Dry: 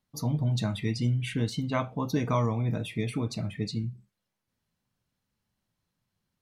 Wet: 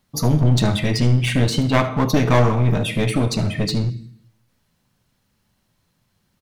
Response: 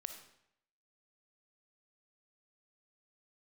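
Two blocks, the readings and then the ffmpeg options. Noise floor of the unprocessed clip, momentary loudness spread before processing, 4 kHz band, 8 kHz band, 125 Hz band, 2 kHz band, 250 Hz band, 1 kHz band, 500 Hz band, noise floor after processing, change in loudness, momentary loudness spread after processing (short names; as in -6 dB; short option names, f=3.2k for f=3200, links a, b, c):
-84 dBFS, 6 LU, +13.0 dB, +13.5 dB, +11.0 dB, +13.5 dB, +10.5 dB, +11.0 dB, +12.0 dB, -68 dBFS, +11.0 dB, 5 LU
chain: -filter_complex "[0:a]aecho=1:1:74:0.141,asplit=2[a][b];[1:a]atrim=start_sample=2205[c];[b][c]afir=irnorm=-1:irlink=0,volume=4.5dB[d];[a][d]amix=inputs=2:normalize=0,aeval=exprs='clip(val(0),-1,0.0447)':c=same,volume=7.5dB"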